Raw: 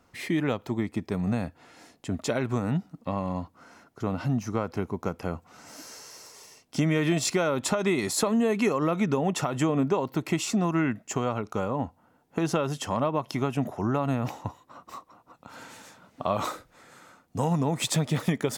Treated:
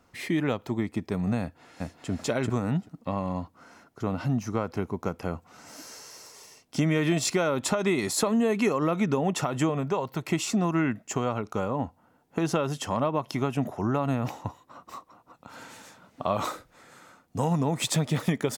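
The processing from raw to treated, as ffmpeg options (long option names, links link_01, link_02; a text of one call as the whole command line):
ffmpeg -i in.wav -filter_complex "[0:a]asplit=2[link_01][link_02];[link_02]afade=type=in:start_time=1.41:duration=0.01,afade=type=out:start_time=2.1:duration=0.01,aecho=0:1:390|780|1170:1|0.1|0.01[link_03];[link_01][link_03]amix=inputs=2:normalize=0,asettb=1/sr,asplit=3[link_04][link_05][link_06];[link_04]atrim=end=9.694[link_07];[link_05]atrim=start=9.69:end=10.29,asetpts=PTS-STARTPTS,afade=type=in:duration=0.004:curve=qsin,afade=type=out:start_time=0.596:duration=0.004:curve=qsin,equalizer=frequency=290:width=2.1:gain=-9[link_08];[link_06]atrim=start=10.286[link_09];[link_07][link_08]acrossfade=duration=0.004:curve1=hsin:curve2=qsin[link_10];[link_10][link_09]acrossfade=duration=0.004:curve1=qsin:curve2=hsin" out.wav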